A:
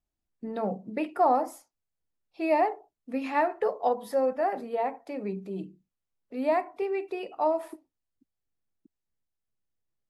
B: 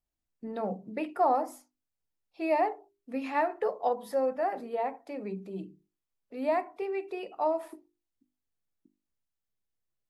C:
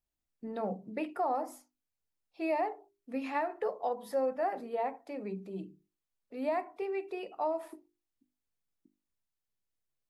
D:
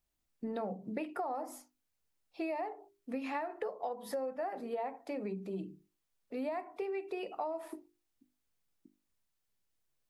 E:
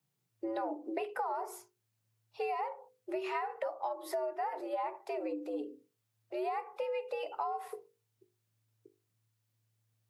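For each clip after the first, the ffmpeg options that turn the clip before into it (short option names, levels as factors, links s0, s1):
-af "bandreject=f=50:t=h:w=6,bandreject=f=100:t=h:w=6,bandreject=f=150:t=h:w=6,bandreject=f=200:t=h:w=6,bandreject=f=250:t=h:w=6,bandreject=f=300:t=h:w=6,bandreject=f=350:t=h:w=6,bandreject=f=400:t=h:w=6,volume=0.75"
-af "alimiter=limit=0.0891:level=0:latency=1:release=207,volume=0.794"
-af "acompressor=threshold=0.01:ratio=6,volume=1.78"
-af "afreqshift=110,volume=1.19"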